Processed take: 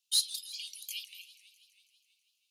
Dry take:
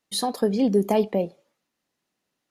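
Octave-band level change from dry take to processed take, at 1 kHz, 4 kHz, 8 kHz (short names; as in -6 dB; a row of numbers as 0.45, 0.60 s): under -40 dB, +1.5 dB, n/a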